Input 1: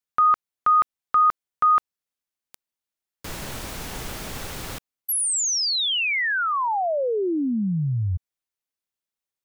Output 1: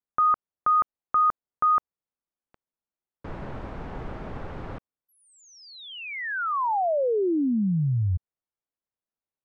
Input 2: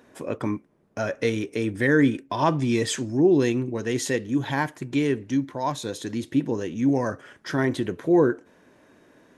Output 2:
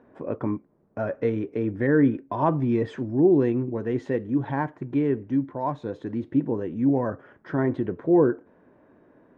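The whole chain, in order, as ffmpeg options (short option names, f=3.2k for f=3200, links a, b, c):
-af "lowpass=1.2k"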